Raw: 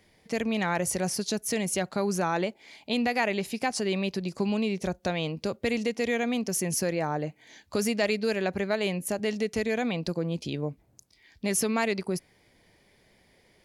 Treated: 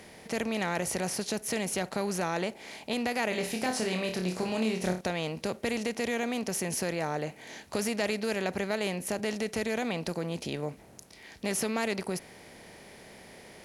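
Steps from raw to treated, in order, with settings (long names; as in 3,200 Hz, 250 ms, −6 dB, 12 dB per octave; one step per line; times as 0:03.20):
compressor on every frequency bin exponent 0.6
0:03.29–0:05.01: flutter between parallel walls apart 4.7 metres, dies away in 0.34 s
level −6.5 dB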